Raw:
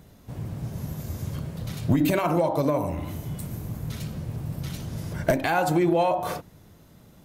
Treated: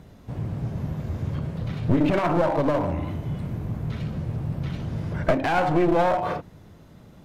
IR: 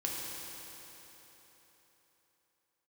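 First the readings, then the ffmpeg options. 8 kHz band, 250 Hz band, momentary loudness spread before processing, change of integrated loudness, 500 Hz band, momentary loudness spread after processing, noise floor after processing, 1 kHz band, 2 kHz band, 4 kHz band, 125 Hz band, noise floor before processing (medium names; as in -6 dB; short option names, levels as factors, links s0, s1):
under -10 dB, +1.0 dB, 12 LU, +1.5 dB, +1.5 dB, 10 LU, -49 dBFS, +2.0 dB, +1.0 dB, -1.5 dB, +2.5 dB, -53 dBFS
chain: -filter_complex "[0:a]acrossover=split=3700[s0][s1];[s1]acompressor=threshold=0.00141:ratio=4:attack=1:release=60[s2];[s0][s2]amix=inputs=2:normalize=0,aemphasis=mode=reproduction:type=50kf,aeval=exprs='clip(val(0),-1,0.0473)':c=same,volume=1.58"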